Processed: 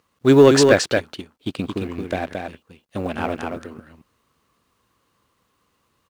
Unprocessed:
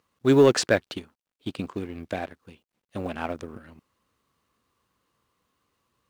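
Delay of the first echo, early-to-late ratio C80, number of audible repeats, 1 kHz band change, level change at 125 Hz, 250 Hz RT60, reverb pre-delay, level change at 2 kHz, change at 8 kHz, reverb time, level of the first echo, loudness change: 223 ms, no reverb, 1, +7.0 dB, +6.5 dB, no reverb, no reverb, +7.0 dB, +7.0 dB, no reverb, -4.5 dB, +6.0 dB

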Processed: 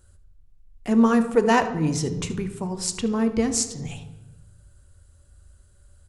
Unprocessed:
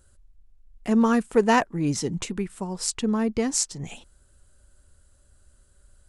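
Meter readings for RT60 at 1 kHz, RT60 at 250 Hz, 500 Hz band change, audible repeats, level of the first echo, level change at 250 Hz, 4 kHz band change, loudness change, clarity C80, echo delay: 0.95 s, 1.5 s, +1.5 dB, 1, -17.5 dB, +2.0 dB, +0.5 dB, +1.5 dB, 13.5 dB, 74 ms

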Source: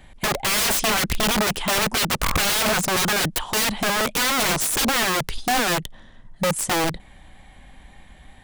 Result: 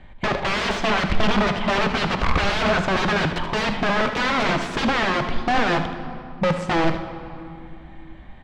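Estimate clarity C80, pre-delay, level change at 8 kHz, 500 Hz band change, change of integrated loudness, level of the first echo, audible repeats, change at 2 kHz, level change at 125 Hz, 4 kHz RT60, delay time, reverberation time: 10.0 dB, 3 ms, -17.0 dB, +2.5 dB, -1.0 dB, -11.0 dB, 1, +0.5 dB, +3.5 dB, 1.5 s, 77 ms, 2.6 s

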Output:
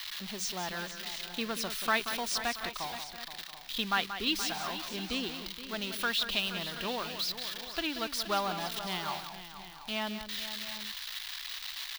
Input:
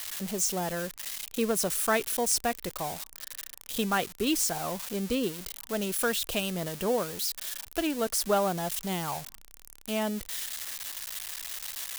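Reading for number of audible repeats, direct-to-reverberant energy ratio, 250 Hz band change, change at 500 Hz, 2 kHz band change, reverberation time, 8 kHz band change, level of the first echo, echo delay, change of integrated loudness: 4, no reverb, -7.0 dB, -9.0 dB, +1.5 dB, no reverb, -9.5 dB, -10.0 dB, 182 ms, -3.5 dB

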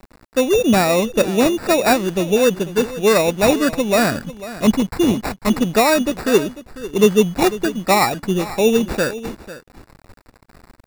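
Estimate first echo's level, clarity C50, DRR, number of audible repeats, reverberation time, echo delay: -15.5 dB, no reverb, no reverb, 1, no reverb, 496 ms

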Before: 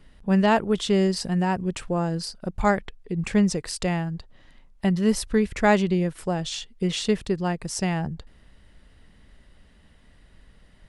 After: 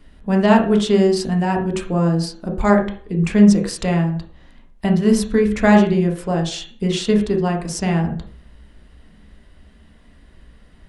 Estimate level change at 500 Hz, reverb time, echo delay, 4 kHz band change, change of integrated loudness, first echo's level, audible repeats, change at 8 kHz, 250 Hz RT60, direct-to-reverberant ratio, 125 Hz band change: +6.5 dB, 0.45 s, no echo, +3.0 dB, +7.0 dB, no echo, no echo, +2.5 dB, 0.50 s, 1.5 dB, +7.0 dB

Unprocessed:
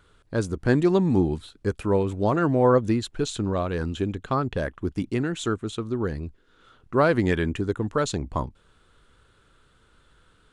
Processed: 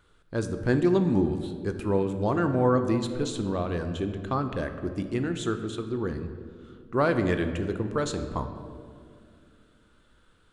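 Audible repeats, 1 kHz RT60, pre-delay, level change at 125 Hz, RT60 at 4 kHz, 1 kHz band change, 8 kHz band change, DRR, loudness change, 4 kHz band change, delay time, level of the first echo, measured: no echo, 1.8 s, 3 ms, -3.0 dB, 1.3 s, -3.5 dB, -3.5 dB, 7.0 dB, -3.0 dB, -3.5 dB, no echo, no echo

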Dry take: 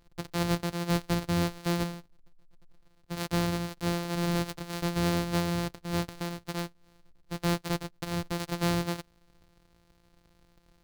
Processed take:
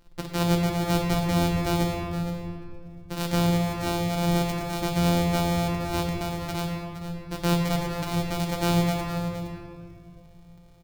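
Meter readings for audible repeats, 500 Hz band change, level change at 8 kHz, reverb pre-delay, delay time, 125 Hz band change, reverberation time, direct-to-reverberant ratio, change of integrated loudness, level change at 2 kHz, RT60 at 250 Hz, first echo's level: 1, +6.0 dB, +4.0 dB, 3 ms, 467 ms, +6.5 dB, 2.4 s, 0.0 dB, +5.0 dB, +3.5 dB, 3.2 s, -11.5 dB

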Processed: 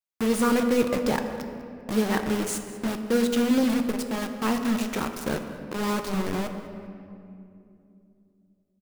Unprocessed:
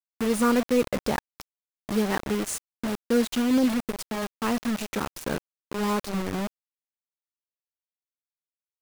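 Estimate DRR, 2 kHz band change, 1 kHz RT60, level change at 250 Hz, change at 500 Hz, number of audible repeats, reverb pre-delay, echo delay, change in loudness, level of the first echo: 6.0 dB, +1.0 dB, 2.4 s, +1.0 dB, +1.0 dB, 1, 5 ms, 197 ms, +1.0 dB, -19.0 dB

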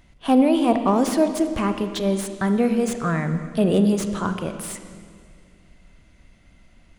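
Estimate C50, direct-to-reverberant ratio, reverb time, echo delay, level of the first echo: 9.0 dB, 8.0 dB, 2.1 s, no echo, no echo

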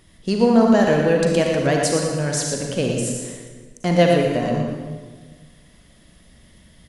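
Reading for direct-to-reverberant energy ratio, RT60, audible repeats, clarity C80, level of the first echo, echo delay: 0.0 dB, 1.5 s, 1, 2.0 dB, -6.5 dB, 115 ms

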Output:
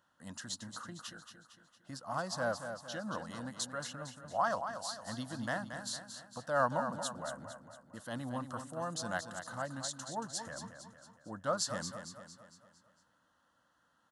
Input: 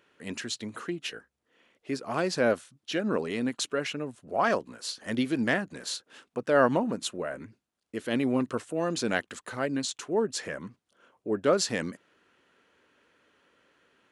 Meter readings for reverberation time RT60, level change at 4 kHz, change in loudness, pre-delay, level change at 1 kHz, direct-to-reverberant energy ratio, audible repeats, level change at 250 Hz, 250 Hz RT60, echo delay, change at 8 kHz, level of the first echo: no reverb, -7.5 dB, -9.0 dB, no reverb, -4.0 dB, no reverb, 5, -13.5 dB, no reverb, 228 ms, -4.0 dB, -8.5 dB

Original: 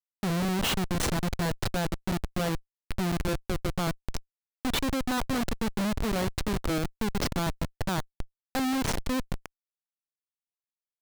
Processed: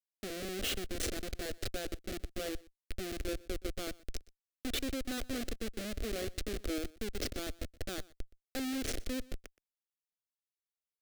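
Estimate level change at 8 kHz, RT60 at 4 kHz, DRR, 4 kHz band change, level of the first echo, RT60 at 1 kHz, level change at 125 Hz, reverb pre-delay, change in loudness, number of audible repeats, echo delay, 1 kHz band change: -5.5 dB, no reverb, no reverb, -6.5 dB, -22.5 dB, no reverb, -15.0 dB, no reverb, -9.0 dB, 1, 122 ms, -16.5 dB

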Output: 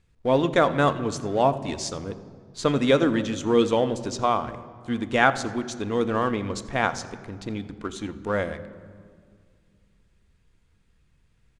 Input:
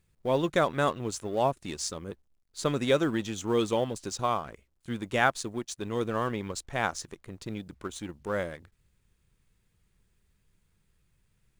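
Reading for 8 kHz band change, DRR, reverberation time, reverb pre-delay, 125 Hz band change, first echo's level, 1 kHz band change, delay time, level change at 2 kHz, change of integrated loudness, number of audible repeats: +0.5 dB, 10.5 dB, 2.0 s, 3 ms, +5.0 dB, -20.5 dB, +5.5 dB, 85 ms, +5.5 dB, +5.5 dB, 1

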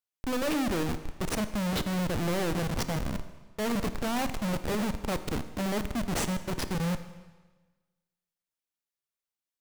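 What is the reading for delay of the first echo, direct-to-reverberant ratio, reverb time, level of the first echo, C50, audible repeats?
no echo, 10.5 dB, 1.3 s, no echo, 12.0 dB, no echo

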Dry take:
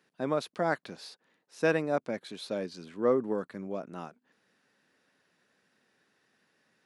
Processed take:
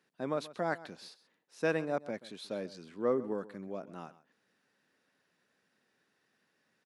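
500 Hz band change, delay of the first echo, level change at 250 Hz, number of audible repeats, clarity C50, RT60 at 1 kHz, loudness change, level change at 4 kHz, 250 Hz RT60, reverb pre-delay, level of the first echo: -4.5 dB, 132 ms, -4.5 dB, 1, no reverb, no reverb, -4.5 dB, -4.5 dB, no reverb, no reverb, -17.5 dB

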